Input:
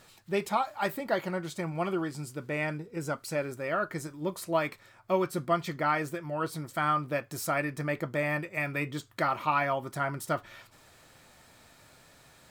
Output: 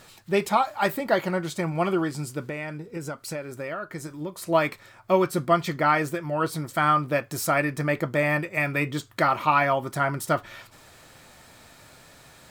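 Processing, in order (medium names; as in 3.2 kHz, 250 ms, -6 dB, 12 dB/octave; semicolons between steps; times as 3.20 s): 2.42–4.47 s: compression 6:1, threshold -37 dBFS, peak gain reduction 11 dB; trim +6.5 dB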